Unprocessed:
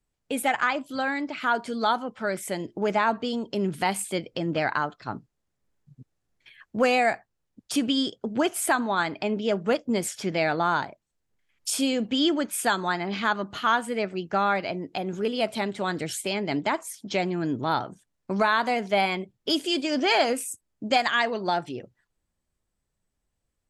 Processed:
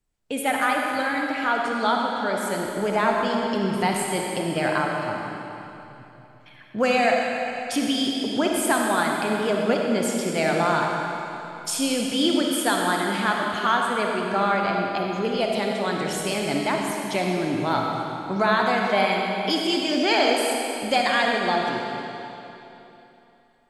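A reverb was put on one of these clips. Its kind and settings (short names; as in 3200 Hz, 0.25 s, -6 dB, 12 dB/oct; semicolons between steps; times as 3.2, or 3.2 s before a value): digital reverb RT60 3.1 s, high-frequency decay 0.95×, pre-delay 15 ms, DRR -0.5 dB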